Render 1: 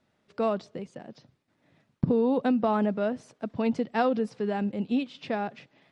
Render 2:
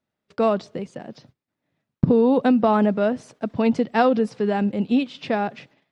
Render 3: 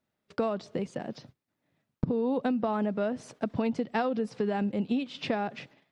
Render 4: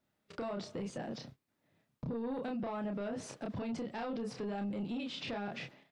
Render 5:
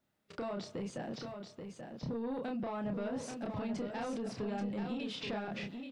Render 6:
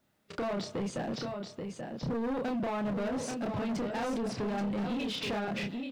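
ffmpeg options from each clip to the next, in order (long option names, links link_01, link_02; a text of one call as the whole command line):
ffmpeg -i in.wav -af "agate=range=-18dB:threshold=-58dB:ratio=16:detection=peak,volume=7dB" out.wav
ffmpeg -i in.wav -af "acompressor=threshold=-26dB:ratio=6" out.wav
ffmpeg -i in.wav -filter_complex "[0:a]asplit=2[link_01][link_02];[link_02]adelay=30,volume=-4dB[link_03];[link_01][link_03]amix=inputs=2:normalize=0,acrossover=split=2800[link_04][link_05];[link_04]asoftclip=type=tanh:threshold=-23.5dB[link_06];[link_06][link_05]amix=inputs=2:normalize=0,alimiter=level_in=9dB:limit=-24dB:level=0:latency=1:release=16,volume=-9dB" out.wav
ffmpeg -i in.wav -af "aecho=1:1:833:0.473" out.wav
ffmpeg -i in.wav -af "asoftclip=type=hard:threshold=-37dB,volume=7dB" out.wav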